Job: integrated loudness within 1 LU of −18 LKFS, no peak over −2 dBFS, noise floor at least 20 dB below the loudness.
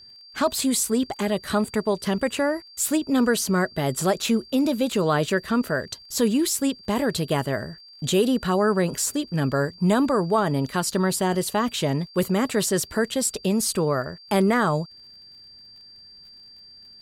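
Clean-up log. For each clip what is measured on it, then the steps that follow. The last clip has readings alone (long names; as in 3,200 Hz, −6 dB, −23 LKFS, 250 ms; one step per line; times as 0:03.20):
crackle rate 28 per second; interfering tone 4,700 Hz; level of the tone −45 dBFS; integrated loudness −23.5 LKFS; sample peak −9.5 dBFS; target loudness −18.0 LKFS
→ click removal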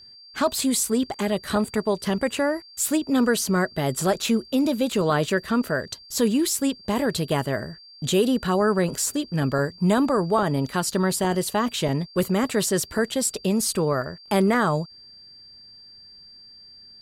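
crackle rate 0.059 per second; interfering tone 4,700 Hz; level of the tone −45 dBFS
→ notch filter 4,700 Hz, Q 30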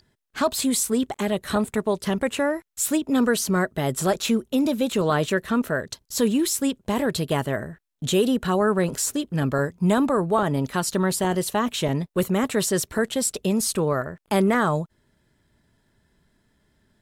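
interfering tone none found; integrated loudness −23.5 LKFS; sample peak −9.5 dBFS; target loudness −18.0 LKFS
→ level +5.5 dB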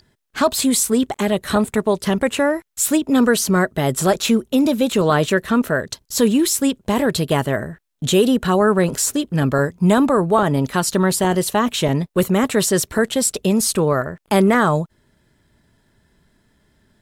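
integrated loudness −18.0 LKFS; sample peak −4.0 dBFS; background noise floor −63 dBFS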